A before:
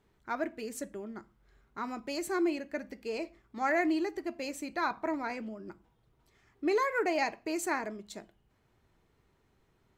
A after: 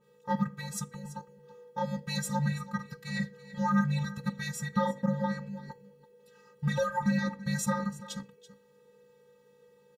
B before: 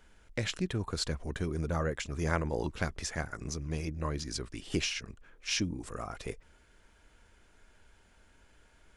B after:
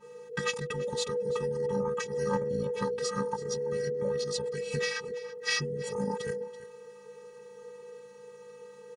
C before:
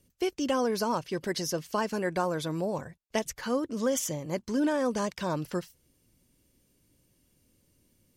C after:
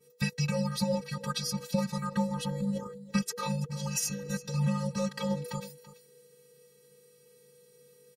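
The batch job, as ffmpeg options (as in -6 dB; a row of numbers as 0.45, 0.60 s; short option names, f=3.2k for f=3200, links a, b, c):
-af "aecho=1:1:1.3:0.76,acompressor=threshold=-32dB:ratio=2.5,afftfilt=real='hypot(re,im)*cos(PI*b)':imag='0':win_size=512:overlap=0.75,afreqshift=-490,aecho=1:1:333:0.141,adynamicequalizer=threshold=0.002:dfrequency=1700:dqfactor=0.7:tfrequency=1700:tqfactor=0.7:attack=5:release=100:ratio=0.375:range=2:mode=cutabove:tftype=highshelf,volume=8.5dB"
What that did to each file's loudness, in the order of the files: +1.0, +3.0, -1.5 LU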